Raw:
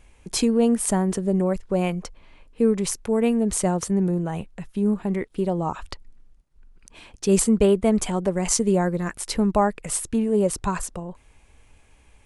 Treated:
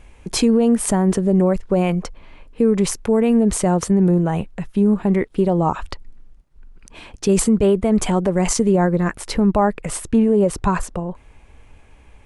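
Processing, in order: treble shelf 3.8 kHz -7 dB, from 8.69 s -12 dB; loudness maximiser +15 dB; trim -7 dB

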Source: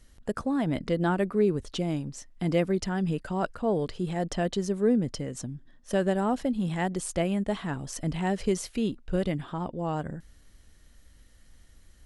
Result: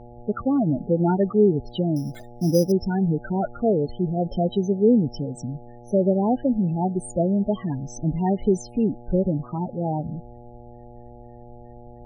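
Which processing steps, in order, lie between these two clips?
loudest bins only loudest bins 8; 1.96–2.72 s: sample-rate reducer 5.5 kHz, jitter 0%; mains buzz 120 Hz, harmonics 7, -51 dBFS -2 dB/octave; trim +6.5 dB

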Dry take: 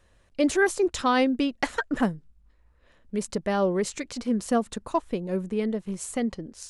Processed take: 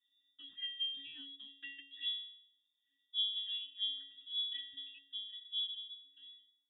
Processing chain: fade out at the end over 1.31 s; pitch-class resonator G#, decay 0.67 s; frequency inversion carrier 3.6 kHz; trim +1 dB

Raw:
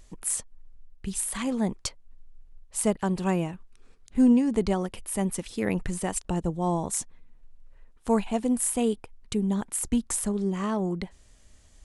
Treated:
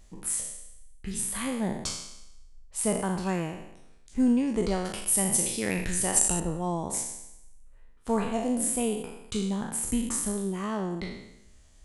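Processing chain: spectral sustain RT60 0.85 s; 4.85–6.40 s: treble shelf 3.5 kHz +12 dB; trim -4 dB

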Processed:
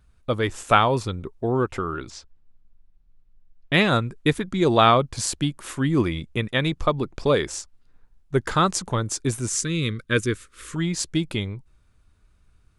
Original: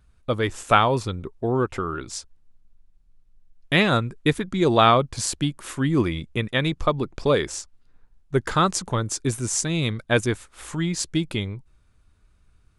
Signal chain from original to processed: 2.10–3.74 s: distance through air 130 m; 9.49–10.76 s: Chebyshev band-stop 480–1200 Hz, order 2

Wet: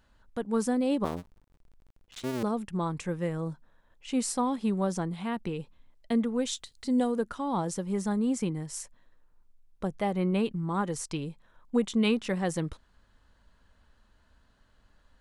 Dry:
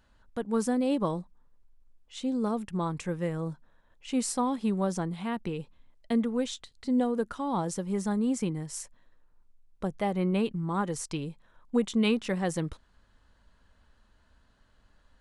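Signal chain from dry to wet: 1.04–2.43 s: cycle switcher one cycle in 2, muted; 6.45–7.15 s: treble shelf 5.8 kHz -> 4 kHz +9.5 dB

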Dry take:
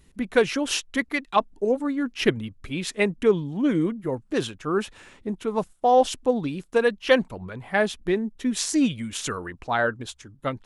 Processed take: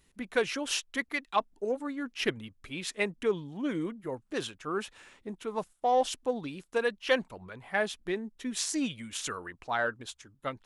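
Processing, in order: bass shelf 400 Hz -8.5 dB; in parallel at -12 dB: saturation -18.5 dBFS, distortion -12 dB; on the sum: trim -6.5 dB

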